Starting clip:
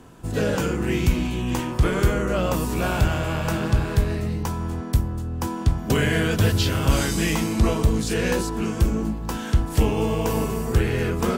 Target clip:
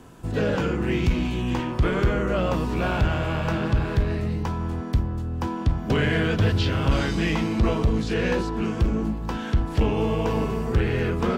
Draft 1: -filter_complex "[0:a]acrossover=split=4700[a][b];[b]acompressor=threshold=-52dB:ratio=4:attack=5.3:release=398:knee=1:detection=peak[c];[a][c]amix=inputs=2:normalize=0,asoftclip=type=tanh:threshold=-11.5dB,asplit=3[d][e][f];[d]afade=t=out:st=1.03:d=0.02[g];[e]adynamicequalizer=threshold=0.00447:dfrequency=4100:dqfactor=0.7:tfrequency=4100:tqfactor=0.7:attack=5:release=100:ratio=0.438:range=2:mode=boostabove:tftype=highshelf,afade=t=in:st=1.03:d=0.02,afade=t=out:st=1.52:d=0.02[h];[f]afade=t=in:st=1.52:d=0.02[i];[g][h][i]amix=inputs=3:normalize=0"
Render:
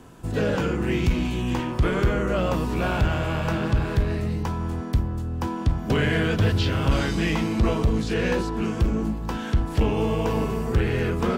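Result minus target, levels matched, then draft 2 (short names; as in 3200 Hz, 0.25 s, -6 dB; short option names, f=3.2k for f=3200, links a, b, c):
compressor: peak gain reduction -5.5 dB
-filter_complex "[0:a]acrossover=split=4700[a][b];[b]acompressor=threshold=-59.5dB:ratio=4:attack=5.3:release=398:knee=1:detection=peak[c];[a][c]amix=inputs=2:normalize=0,asoftclip=type=tanh:threshold=-11.5dB,asplit=3[d][e][f];[d]afade=t=out:st=1.03:d=0.02[g];[e]adynamicequalizer=threshold=0.00447:dfrequency=4100:dqfactor=0.7:tfrequency=4100:tqfactor=0.7:attack=5:release=100:ratio=0.438:range=2:mode=boostabove:tftype=highshelf,afade=t=in:st=1.03:d=0.02,afade=t=out:st=1.52:d=0.02[h];[f]afade=t=in:st=1.52:d=0.02[i];[g][h][i]amix=inputs=3:normalize=0"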